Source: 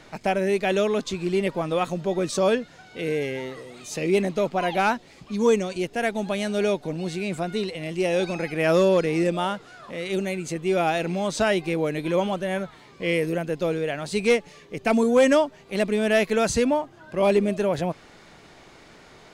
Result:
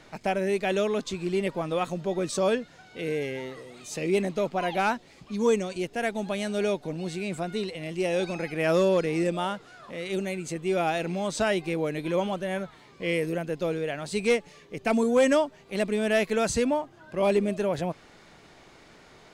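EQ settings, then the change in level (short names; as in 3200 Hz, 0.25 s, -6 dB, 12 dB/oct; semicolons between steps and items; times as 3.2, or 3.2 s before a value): dynamic EQ 8000 Hz, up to +4 dB, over -55 dBFS, Q 6.9; -3.5 dB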